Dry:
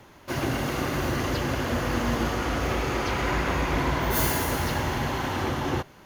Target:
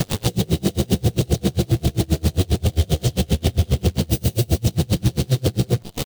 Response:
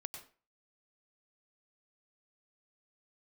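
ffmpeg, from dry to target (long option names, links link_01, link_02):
-filter_complex "[0:a]asplit=2[link_01][link_02];[link_02]asoftclip=type=tanh:threshold=-24dB,volume=-4.5dB[link_03];[link_01][link_03]amix=inputs=2:normalize=0,acompressor=threshold=-33dB:ratio=16,equalizer=frequency=80:width=0.78:gain=13,acrossover=split=400|3000[link_04][link_05][link_06];[link_05]acompressor=threshold=-44dB:ratio=6[link_07];[link_04][link_07][link_06]amix=inputs=3:normalize=0,firequalizer=gain_entry='entry(530,0);entry(810,-30);entry(2300,4);entry(5000,0)':delay=0.05:min_phase=1,asetrate=60591,aresample=44100,atempo=0.727827,acrusher=bits=8:dc=4:mix=0:aa=0.000001,alimiter=level_in=32dB:limit=-1dB:release=50:level=0:latency=1,aeval=exprs='val(0)*pow(10,-33*(0.5-0.5*cos(2*PI*7.5*n/s))/20)':channel_layout=same,volume=-6dB"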